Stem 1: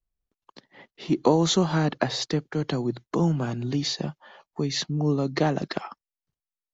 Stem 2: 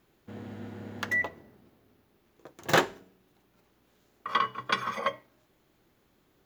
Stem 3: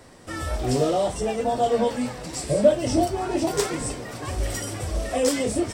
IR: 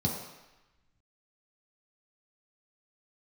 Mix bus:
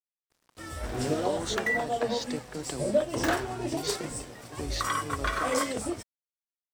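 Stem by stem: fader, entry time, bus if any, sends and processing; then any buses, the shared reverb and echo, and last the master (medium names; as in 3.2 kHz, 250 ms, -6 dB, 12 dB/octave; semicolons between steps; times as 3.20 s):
-6.5 dB, 0.00 s, bus A, no send, none
+1.0 dB, 0.55 s, bus A, no send, peaking EQ 1.5 kHz +6.5 dB; waveshaping leveller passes 2; peak limiter -14.5 dBFS, peak gain reduction 8.5 dB
-8.0 dB, 0.30 s, no bus, no send, treble shelf 5.1 kHz +4 dB
bus A: 0.0 dB, peaking EQ 170 Hz -12 dB 0.72 oct; compression 3:1, threshold -29 dBFS, peak gain reduction 9.5 dB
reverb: none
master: crossover distortion -51.5 dBFS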